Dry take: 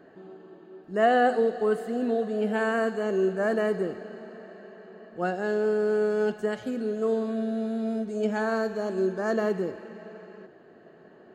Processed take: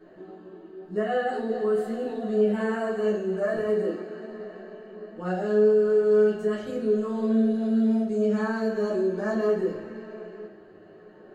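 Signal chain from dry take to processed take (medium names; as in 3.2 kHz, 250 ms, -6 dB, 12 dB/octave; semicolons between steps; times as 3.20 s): 3.56–4.30 s: high-pass 210 Hz; peak limiter -22 dBFS, peak gain reduction 12 dB; chorus voices 4, 0.82 Hz, delay 12 ms, depth 2.5 ms; simulated room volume 48 m³, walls mixed, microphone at 1 m; trim -1.5 dB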